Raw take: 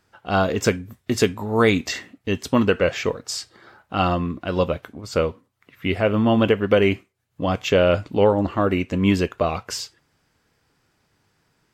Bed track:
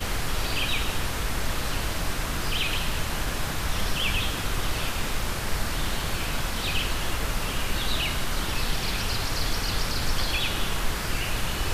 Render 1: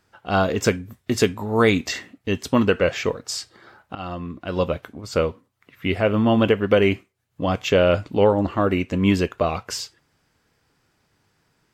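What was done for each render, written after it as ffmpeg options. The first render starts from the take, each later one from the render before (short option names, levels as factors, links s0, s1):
-filter_complex "[0:a]asplit=2[s0][s1];[s0]atrim=end=3.95,asetpts=PTS-STARTPTS,afade=t=out:st=3.946:d=0.004:c=hsin:silence=0.149624[s2];[s1]atrim=start=3.95,asetpts=PTS-STARTPTS,afade=t=in:d=0.8:silence=0.149624[s3];[s2][s3]concat=n=2:v=0:a=1"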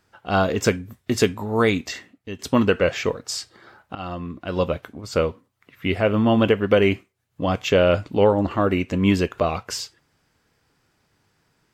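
-filter_complex "[0:a]asettb=1/sr,asplit=3[s0][s1][s2];[s0]atrim=end=8.514[s3];[s1]atrim=start=8.51:end=9.46,asetpts=PTS-STARTPTS,afade=t=in:d=0.004:c=qsin,afade=t=out:st=0.946:d=0.004:c=qsin,acompressor=mode=upward:threshold=0.0447:ratio=2.5:attack=3.2:release=140:knee=2.83:detection=peak[s4];[s2]atrim=start=9.456[s5];[s3][s4]acrossfade=d=0.004:c1=hsin:c2=qsin[s6];[s6][s5]acrossfade=d=0.004:c1=qsin:c2=hsin,asplit=2[s7][s8];[s7]atrim=end=2.39,asetpts=PTS-STARTPTS,afade=t=out:st=1.38:d=1.01:silence=0.266073[s9];[s8]atrim=start=2.39,asetpts=PTS-STARTPTS,afade=t=in:d=0.004:c=hsin:silence=0.266073[s10];[s9][s10]concat=n=2:v=0:a=1"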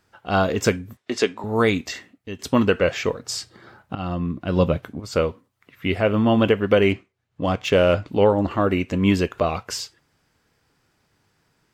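-filter_complex "[0:a]asettb=1/sr,asplit=3[s0][s1][s2];[s0]atrim=end=0.974[s3];[s1]atrim=start=0.97:end=1.44,asetpts=PTS-STARTPTS,afade=t=in:d=0.004:c=qsin,afade=t=out:st=0.466:d=0.004:c=qsin,highpass=320,lowpass=6000[s4];[s2]atrim=start=1.436[s5];[s3][s4]acrossfade=d=0.004:c1=hsin:c2=qsin[s6];[s6][s5]acrossfade=d=0.004:c1=qsin:c2=hsin,asettb=1/sr,asplit=3[s7][s8][s9];[s7]atrim=end=3.204[s10];[s8]atrim=start=3.2:end=5,asetpts=PTS-STARTPTS,afade=t=in:d=0.004:c=qsin,afade=t=out:st=1.796:d=0.004:c=qsin,equalizer=f=140:t=o:w=2.2:g=8.5[s11];[s9]atrim=start=4.996[s12];[s10][s11]acrossfade=d=0.004:c1=hsin:c2=qsin[s13];[s13][s12]acrossfade=d=0.004:c1=qsin:c2=hsin,asettb=1/sr,asplit=3[s14][s15][s16];[s14]atrim=end=6.894[s17];[s15]atrim=start=6.89:end=8.08,asetpts=PTS-STARTPTS,afade=t=in:d=0.004:c=qsin,afade=t=out:st=1.186:d=0.004:c=qsin,adynamicsmooth=sensitivity=5.5:basefreq=5800[s18];[s16]atrim=start=8.076[s19];[s17][s18]acrossfade=d=0.004:c1=hsin:c2=qsin[s20];[s20][s19]acrossfade=d=0.004:c1=qsin:c2=hsin"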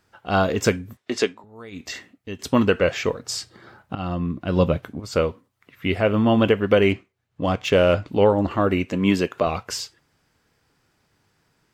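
-filter_complex "[0:a]asettb=1/sr,asplit=3[s0][s1][s2];[s0]atrim=end=8.874[s3];[s1]atrim=start=8.87:end=9.47,asetpts=PTS-STARTPTS,afade=t=in:d=0.004:c=qsin,afade=t=out:st=0.596:d=0.004:c=qsin,highpass=140[s4];[s2]atrim=start=9.466[s5];[s3][s4]acrossfade=d=0.004:c1=hsin:c2=qsin[s6];[s6][s5]acrossfade=d=0.004:c1=qsin:c2=hsin,asplit=3[s7][s8][s9];[s7]atrim=end=1.45,asetpts=PTS-STARTPTS,afade=t=out:st=1.21:d=0.24:silence=0.0794328[s10];[s8]atrim=start=1.45:end=1.71,asetpts=PTS-STARTPTS,volume=0.0794[s11];[s9]atrim=start=1.71,asetpts=PTS-STARTPTS,afade=t=in:d=0.24:silence=0.0794328[s12];[s10][s11][s12]concat=n=3:v=0:a=1"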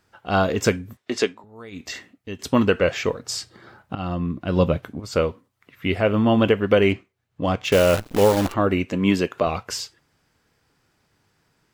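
-filter_complex "[0:a]asettb=1/sr,asplit=3[s0][s1][s2];[s0]atrim=end=7.724[s3];[s1]atrim=start=7.72:end=8.54,asetpts=PTS-STARTPTS,afade=t=in:d=0.004:c=qsin,afade=t=out:st=0.816:d=0.004:c=qsin,acrusher=bits=5:dc=4:mix=0:aa=0.000001[s4];[s2]atrim=start=8.536[s5];[s3][s4]acrossfade=d=0.004:c1=hsin:c2=qsin[s6];[s6][s5]acrossfade=d=0.004:c1=qsin:c2=hsin"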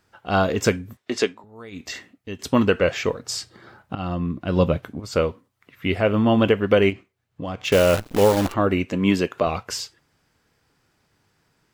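-filter_complex "[0:a]asplit=3[s0][s1][s2];[s0]afade=t=out:st=6.89:d=0.02[s3];[s1]acompressor=threshold=0.0398:ratio=3:attack=3.2:release=140:knee=1:detection=peak,afade=t=in:st=6.89:d=0.02,afade=t=out:st=7.63:d=0.02[s4];[s2]afade=t=in:st=7.63:d=0.02[s5];[s3][s4][s5]amix=inputs=3:normalize=0"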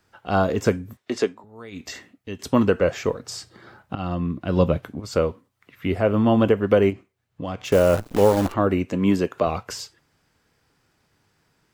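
-filter_complex "[0:a]acrossover=split=380|1600|5000[s0][s1][s2][s3];[s2]acompressor=threshold=0.01:ratio=6[s4];[s3]alimiter=level_in=1.5:limit=0.0631:level=0:latency=1:release=84,volume=0.668[s5];[s0][s1][s4][s5]amix=inputs=4:normalize=0"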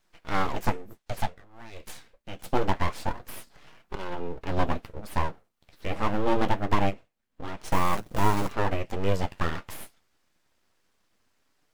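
-af "aeval=exprs='abs(val(0))':c=same,flanger=delay=5.2:depth=8.4:regen=-45:speed=0.25:shape=triangular"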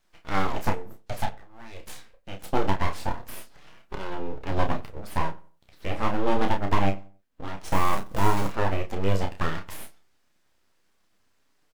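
-filter_complex "[0:a]asplit=2[s0][s1];[s1]adelay=31,volume=0.473[s2];[s0][s2]amix=inputs=2:normalize=0,asplit=2[s3][s4];[s4]adelay=91,lowpass=f=1700:p=1,volume=0.1,asplit=2[s5][s6];[s6]adelay=91,lowpass=f=1700:p=1,volume=0.32,asplit=2[s7][s8];[s8]adelay=91,lowpass=f=1700:p=1,volume=0.32[s9];[s3][s5][s7][s9]amix=inputs=4:normalize=0"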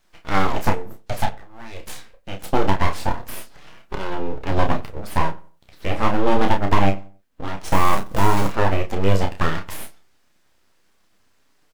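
-af "volume=2.11,alimiter=limit=0.708:level=0:latency=1"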